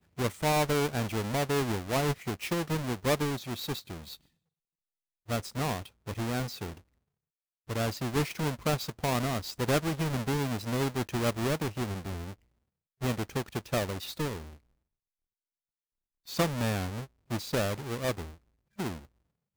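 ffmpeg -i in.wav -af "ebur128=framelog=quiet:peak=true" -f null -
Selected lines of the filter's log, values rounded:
Integrated loudness:
  I:         -31.8 LUFS
  Threshold: -42.3 LUFS
Loudness range:
  LRA:         6.3 LU
  Threshold: -53.3 LUFS
  LRA low:   -36.9 LUFS
  LRA high:  -30.5 LUFS
True peak:
  Peak:      -16.4 dBFS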